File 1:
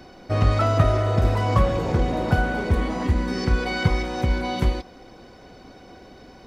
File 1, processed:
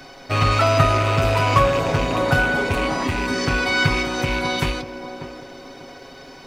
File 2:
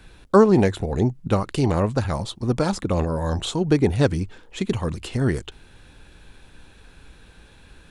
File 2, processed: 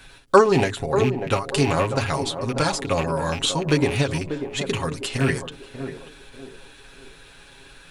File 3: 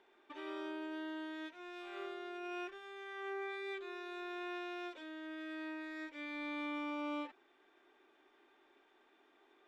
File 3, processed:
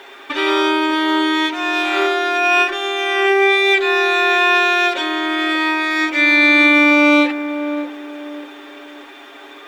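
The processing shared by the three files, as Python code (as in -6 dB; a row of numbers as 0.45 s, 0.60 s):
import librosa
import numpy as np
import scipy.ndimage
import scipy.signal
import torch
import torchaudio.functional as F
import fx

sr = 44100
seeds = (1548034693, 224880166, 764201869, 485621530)

p1 = fx.rattle_buzz(x, sr, strikes_db=-23.0, level_db=-25.0)
p2 = fx.tilt_shelf(p1, sr, db=-5.0, hz=730.0)
p3 = fx.hum_notches(p2, sr, base_hz=60, count=7)
p4 = p3 + 0.62 * np.pad(p3, (int(7.3 * sr / 1000.0), 0))[:len(p3)]
p5 = p4 + fx.echo_banded(p4, sr, ms=591, feedback_pct=41, hz=420.0, wet_db=-7.5, dry=0)
p6 = fx.end_taper(p5, sr, db_per_s=140.0)
y = p6 * 10.0 ** (-1.5 / 20.0) / np.max(np.abs(p6))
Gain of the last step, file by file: +3.5 dB, +1.5 dB, +27.5 dB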